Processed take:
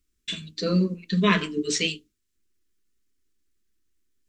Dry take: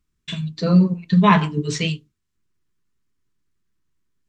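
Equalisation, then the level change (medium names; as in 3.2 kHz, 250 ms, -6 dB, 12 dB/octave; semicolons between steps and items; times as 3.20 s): treble shelf 4.9 kHz +5.5 dB; static phaser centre 340 Hz, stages 4; 0.0 dB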